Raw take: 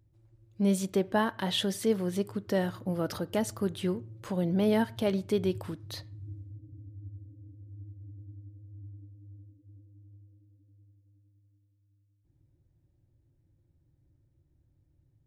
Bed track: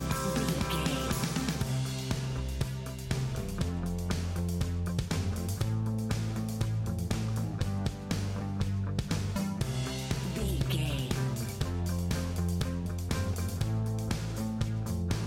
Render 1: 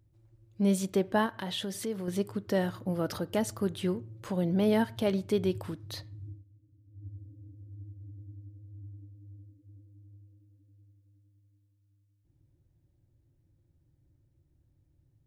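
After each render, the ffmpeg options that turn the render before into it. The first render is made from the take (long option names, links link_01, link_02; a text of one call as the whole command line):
ffmpeg -i in.wav -filter_complex "[0:a]asettb=1/sr,asplit=3[link_01][link_02][link_03];[link_01]atrim=end=1.264[link_04];[link_02]atrim=start=1.26:end=2.08,asetpts=PTS-STARTPTS,afade=type=in:duration=0.004:curve=qsin,afade=type=out:start_time=0.816:duration=0.004:curve=qsin,acompressor=threshold=-35dB:ratio=2:attack=3.2:release=140:knee=1:detection=peak[link_05];[link_03]atrim=start=2.076[link_06];[link_04][link_05]acrossfade=duration=0.004:curve1=hsin:curve2=qsin[link_07];[link_07][link_06]acrossfade=duration=0.004:curve1=qsin:curve2=hsin,asplit=3[link_08][link_09][link_10];[link_08]atrim=end=6.45,asetpts=PTS-STARTPTS,afade=type=out:start_time=6.26:duration=0.19:silence=0.188365[link_11];[link_09]atrim=start=6.45:end=6.87,asetpts=PTS-STARTPTS,volume=-14.5dB[link_12];[link_10]atrim=start=6.87,asetpts=PTS-STARTPTS,afade=type=in:duration=0.19:silence=0.188365[link_13];[link_11][link_12][link_13]concat=n=3:v=0:a=1" out.wav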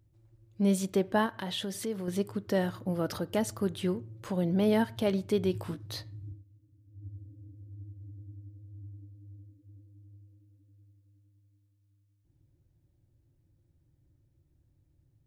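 ffmpeg -i in.wav -filter_complex "[0:a]asettb=1/sr,asplit=3[link_01][link_02][link_03];[link_01]atrim=end=5.524[link_04];[link_02]atrim=start=5.52:end=6.32,asetpts=PTS-STARTPTS,afade=type=in:duration=0.004:curve=qsin,afade=type=out:start_time=0.796:duration=0.004:curve=qsin,asplit=2[link_05][link_06];[link_06]adelay=17,volume=-4.5dB[link_07];[link_05][link_07]amix=inputs=2:normalize=0,atrim=end_sample=35280[link_08];[link_03]atrim=start=6.316[link_09];[link_04][link_08]acrossfade=duration=0.004:curve1=hsin:curve2=qsin[link_10];[link_10][link_09]acrossfade=duration=0.004:curve1=qsin:curve2=hsin" out.wav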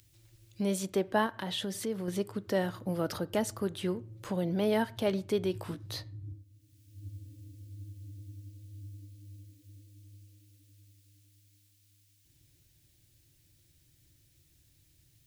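ffmpeg -i in.wav -filter_complex "[0:a]acrossover=split=340|2200[link_01][link_02][link_03];[link_01]alimiter=level_in=4dB:limit=-24dB:level=0:latency=1:release=420,volume=-4dB[link_04];[link_03]acompressor=mode=upward:threshold=-50dB:ratio=2.5[link_05];[link_04][link_02][link_05]amix=inputs=3:normalize=0" out.wav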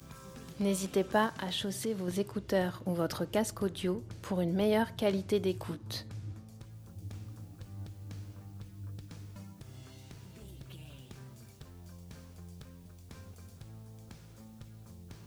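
ffmpeg -i in.wav -i bed.wav -filter_complex "[1:a]volume=-18.5dB[link_01];[0:a][link_01]amix=inputs=2:normalize=0" out.wav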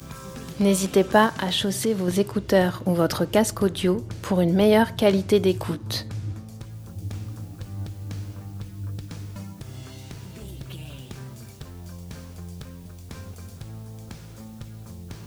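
ffmpeg -i in.wav -af "volume=11dB" out.wav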